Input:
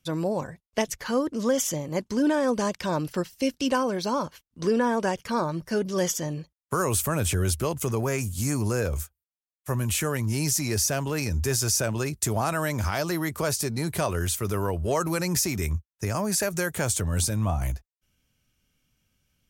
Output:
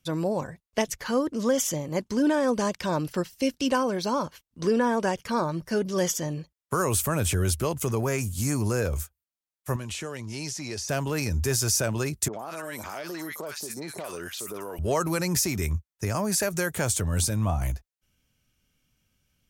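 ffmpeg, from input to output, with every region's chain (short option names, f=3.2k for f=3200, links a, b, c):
-filter_complex "[0:a]asettb=1/sr,asplit=3[a][b][c];[a]atrim=end=9.764[d];[b]atrim=start=9.76:end=10.89,asetpts=PTS-STARTPTS,afade=t=in:d=0.004:c=qsin,afade=t=out:st=1.126:d=0.004:c=qsin,lowpass=5.6k,lowshelf=f=270:g=-11,acrossover=split=950|2400[e][f][g];[e]acompressor=threshold=-32dB:ratio=4[h];[f]acompressor=threshold=-51dB:ratio=4[i];[g]acompressor=threshold=-33dB:ratio=4[j];[h][i][j]amix=inputs=3:normalize=0[k];[c]atrim=start=10.886[l];[d][k]acrossfade=d=0.004:c1=hsin:c2=qsin[m];[m][l]acrossfade=d=0.004:c1=qsin:c2=hsin,asettb=1/sr,asplit=3[n][o][p];[n]atrim=end=12.284[q];[o]atrim=start=12.28:end=14.79,asetpts=PTS-STARTPTS,afade=t=in:d=0.004:c=qsin,afade=t=out:st=2.506:d=0.004:c=qsin,highpass=290,acrossover=split=1200|5500[r][s][t];[s]adelay=50[u];[t]adelay=110[v];[r][u][v]amix=inputs=3:normalize=0,atrim=end_sample=110691,acompressor=threshold=-31dB:ratio=10:attack=3.2:release=140:knee=1:detection=peak[w];[p]atrim=start=14.786[x];[q][w]acrossfade=d=0.004:c1=hsin:c2=qsin[y];[y][x]acrossfade=d=0.004:c1=qsin:c2=hsin"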